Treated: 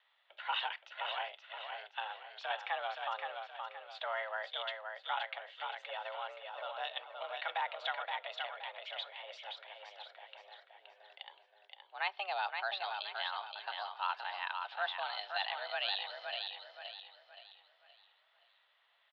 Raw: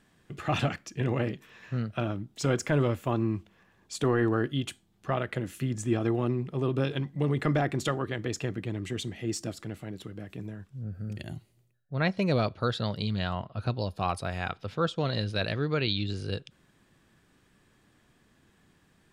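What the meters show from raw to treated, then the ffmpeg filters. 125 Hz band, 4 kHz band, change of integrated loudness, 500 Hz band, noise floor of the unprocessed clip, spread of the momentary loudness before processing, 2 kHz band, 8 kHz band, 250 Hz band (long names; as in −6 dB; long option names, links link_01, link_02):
below −40 dB, −1.5 dB, −9.0 dB, −14.0 dB, −66 dBFS, 13 LU, −2.5 dB, below −30 dB, below −40 dB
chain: -af "aexciter=amount=1.5:drive=8.4:freq=2800,aecho=1:1:522|1044|1566|2088|2610:0.562|0.214|0.0812|0.0309|0.0117,highpass=frequency=530:width_type=q:width=0.5412,highpass=frequency=530:width_type=q:width=1.307,lowpass=frequency=3400:width_type=q:width=0.5176,lowpass=frequency=3400:width_type=q:width=0.7071,lowpass=frequency=3400:width_type=q:width=1.932,afreqshift=200,volume=-5.5dB"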